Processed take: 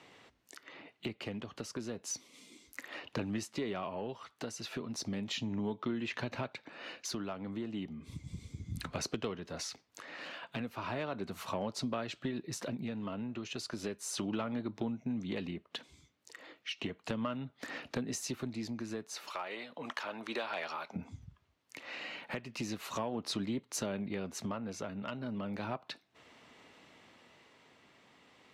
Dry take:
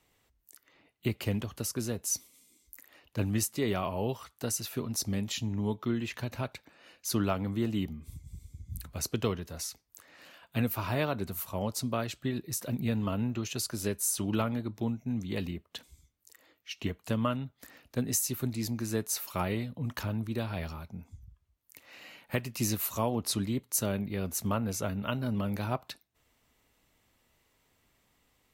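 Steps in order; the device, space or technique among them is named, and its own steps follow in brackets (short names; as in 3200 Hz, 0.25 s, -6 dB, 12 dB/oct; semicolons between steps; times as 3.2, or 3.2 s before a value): 19.3–20.96 HPF 640 Hz 12 dB/oct; AM radio (BPF 180–4200 Hz; compressor 4:1, threshold -50 dBFS, peak gain reduction 20.5 dB; soft clip -37.5 dBFS, distortion -23 dB; tremolo 0.34 Hz, depth 39%); gain +14.5 dB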